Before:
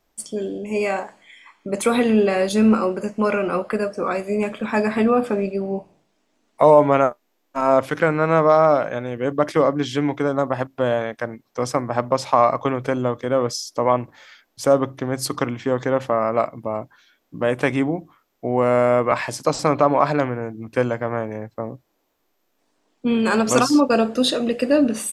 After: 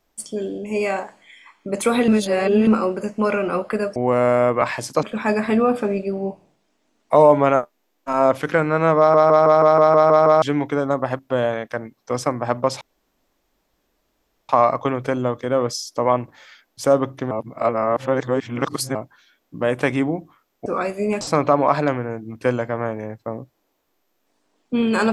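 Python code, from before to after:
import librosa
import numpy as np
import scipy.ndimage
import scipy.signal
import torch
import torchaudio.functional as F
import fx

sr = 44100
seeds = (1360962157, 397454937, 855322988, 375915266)

y = fx.edit(x, sr, fx.reverse_span(start_s=2.08, length_s=0.59),
    fx.swap(start_s=3.96, length_s=0.55, other_s=18.46, other_length_s=1.07),
    fx.stutter_over(start_s=8.46, slice_s=0.16, count=9),
    fx.insert_room_tone(at_s=12.29, length_s=1.68),
    fx.reverse_span(start_s=15.11, length_s=1.64), tone=tone)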